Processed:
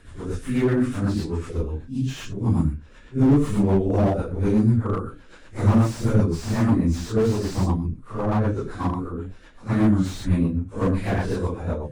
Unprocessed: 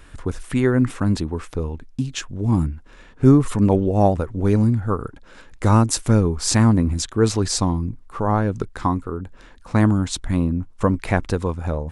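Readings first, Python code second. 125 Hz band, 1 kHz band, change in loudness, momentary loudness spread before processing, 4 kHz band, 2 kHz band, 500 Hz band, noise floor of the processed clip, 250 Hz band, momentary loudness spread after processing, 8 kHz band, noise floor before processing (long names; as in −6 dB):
−2.5 dB, −6.0 dB, −2.5 dB, 12 LU, −9.5 dB, −4.5 dB, −2.5 dB, −46 dBFS, −2.0 dB, 10 LU, −13.5 dB, −47 dBFS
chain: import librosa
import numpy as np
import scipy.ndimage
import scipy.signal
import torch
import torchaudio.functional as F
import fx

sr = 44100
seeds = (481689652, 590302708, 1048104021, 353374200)

y = fx.phase_scramble(x, sr, seeds[0], window_ms=200)
y = fx.rotary(y, sr, hz=8.0)
y = fx.slew_limit(y, sr, full_power_hz=59.0)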